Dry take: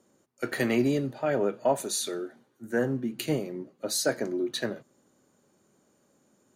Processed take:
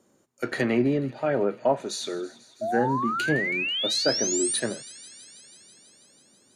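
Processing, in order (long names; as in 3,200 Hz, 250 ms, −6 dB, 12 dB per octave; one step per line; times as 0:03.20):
treble cut that deepens with the level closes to 2,400 Hz, closed at −21.5 dBFS
sound drawn into the spectrogram rise, 0:02.61–0:04.60, 620–10,000 Hz −30 dBFS
delay with a high-pass on its return 163 ms, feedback 80%, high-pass 2,600 Hz, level −17.5 dB
level +2 dB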